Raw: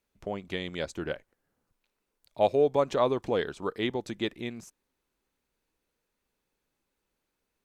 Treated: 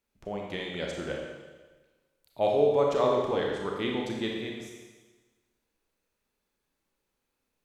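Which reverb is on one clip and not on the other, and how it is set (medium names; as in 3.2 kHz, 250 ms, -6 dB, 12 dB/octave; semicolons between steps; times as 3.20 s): Schroeder reverb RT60 1.3 s, combs from 28 ms, DRR -1 dB; trim -3 dB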